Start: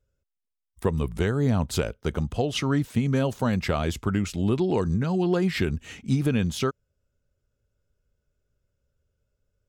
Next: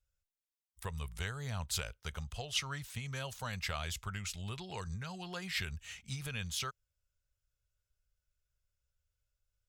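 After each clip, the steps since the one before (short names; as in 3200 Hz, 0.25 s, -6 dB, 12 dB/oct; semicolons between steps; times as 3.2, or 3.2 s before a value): passive tone stack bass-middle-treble 10-0-10; gain -2 dB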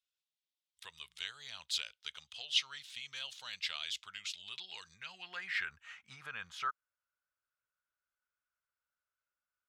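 band-pass sweep 3500 Hz -> 1300 Hz, 4.76–5.82; gain +7 dB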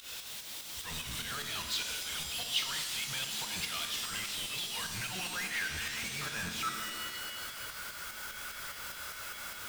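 zero-crossing step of -30 dBFS; pump 148 bpm, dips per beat 2, -16 dB, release 0.142 s; shimmer reverb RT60 1.6 s, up +7 st, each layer -2 dB, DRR 5 dB; gain -4 dB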